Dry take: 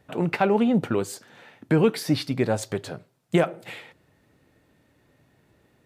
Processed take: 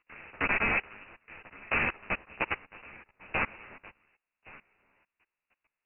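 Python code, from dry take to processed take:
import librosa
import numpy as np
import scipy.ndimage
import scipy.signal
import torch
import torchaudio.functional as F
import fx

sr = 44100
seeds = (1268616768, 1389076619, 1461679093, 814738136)

p1 = fx.spec_flatten(x, sr, power=0.24)
p2 = fx.env_lowpass(p1, sr, base_hz=2000.0, full_db=-17.5)
p3 = p2 + fx.echo_single(p2, sr, ms=1118, db=-11.0, dry=0)
p4 = fx.level_steps(p3, sr, step_db=22)
p5 = fx.freq_invert(p4, sr, carrier_hz=2800)
y = fx.ensemble(p5, sr)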